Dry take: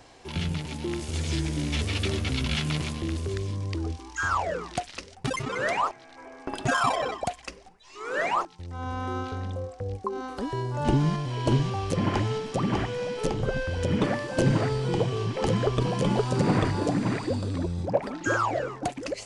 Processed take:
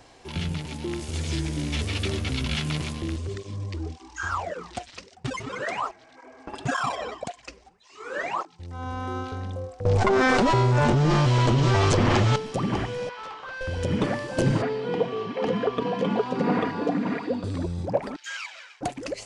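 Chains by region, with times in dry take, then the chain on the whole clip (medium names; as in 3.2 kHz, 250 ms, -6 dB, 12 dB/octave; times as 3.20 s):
3.16–8.62 s: steep low-pass 9 kHz 48 dB/octave + cancelling through-zero flanger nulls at 1.8 Hz, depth 7.9 ms
9.85–12.36 s: comb filter that takes the minimum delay 8.3 ms + steep low-pass 8.4 kHz + level flattener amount 100%
13.09–13.61 s: resonant high-pass 1.1 kHz, resonance Q 3.1 + overload inside the chain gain 33.5 dB + distance through air 150 m
14.62–17.44 s: band-pass 190–3000 Hz + comb 4.2 ms, depth 60%
18.16–18.81 s: comb filter that takes the minimum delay 9.2 ms + Butterworth band-pass 4 kHz, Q 0.81 + comb 1.3 ms, depth 36%
whole clip: none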